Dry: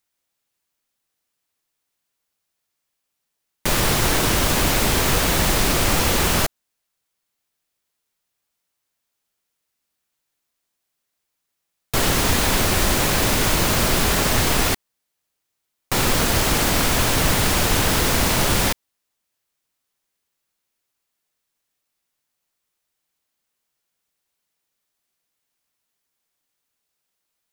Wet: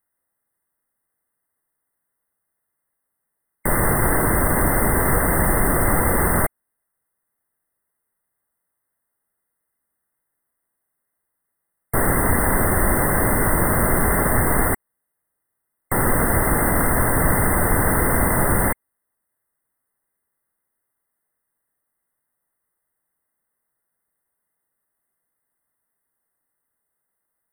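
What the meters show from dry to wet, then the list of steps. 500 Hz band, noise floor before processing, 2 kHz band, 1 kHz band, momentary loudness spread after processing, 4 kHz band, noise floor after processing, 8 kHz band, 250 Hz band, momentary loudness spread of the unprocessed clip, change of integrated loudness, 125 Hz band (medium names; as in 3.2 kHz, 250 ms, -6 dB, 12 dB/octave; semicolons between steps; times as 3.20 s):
+1.5 dB, -79 dBFS, -0.5 dB, +1.5 dB, 4 LU, under -40 dB, -78 dBFS, -2.5 dB, +1.5 dB, 4 LU, -0.5 dB, +1.5 dB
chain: brick-wall FIR band-stop 2.1–8.1 kHz; trim +1.5 dB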